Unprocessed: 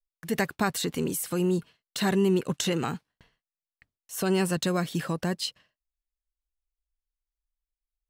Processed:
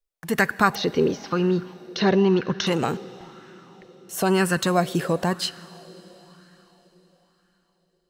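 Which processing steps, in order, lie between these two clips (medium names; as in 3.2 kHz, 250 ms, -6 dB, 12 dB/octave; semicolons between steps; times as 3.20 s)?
0.75–2.67 s: steep low-pass 6.1 kHz 96 dB/octave; plate-style reverb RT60 4.9 s, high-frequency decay 0.95×, DRR 16.5 dB; sweeping bell 1 Hz 430–1600 Hz +10 dB; trim +3.5 dB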